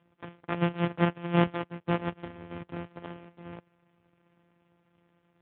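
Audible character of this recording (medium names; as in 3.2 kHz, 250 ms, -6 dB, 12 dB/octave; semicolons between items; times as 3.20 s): a buzz of ramps at a fixed pitch in blocks of 256 samples; AMR-NB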